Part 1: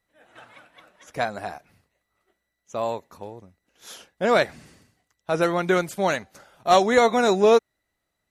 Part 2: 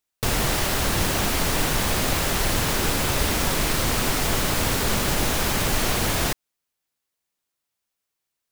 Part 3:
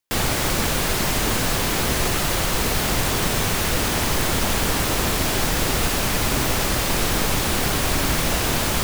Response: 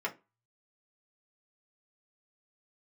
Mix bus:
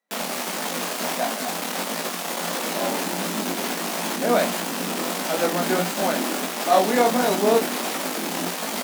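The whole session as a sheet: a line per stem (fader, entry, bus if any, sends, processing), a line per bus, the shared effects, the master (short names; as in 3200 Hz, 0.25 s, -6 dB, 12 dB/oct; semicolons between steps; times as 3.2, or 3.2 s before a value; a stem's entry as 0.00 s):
+3.0 dB, 0.00 s, no send, dry
-8.0 dB, 2.15 s, no send, resonant low shelf 480 Hz +11.5 dB, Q 3; photocell phaser 0.74 Hz
-2.0 dB, 0.00 s, no send, added harmonics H 8 -9 dB, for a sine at -7 dBFS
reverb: off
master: chorus 1.5 Hz, delay 18 ms, depth 6.9 ms; rippled Chebyshev high-pass 170 Hz, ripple 6 dB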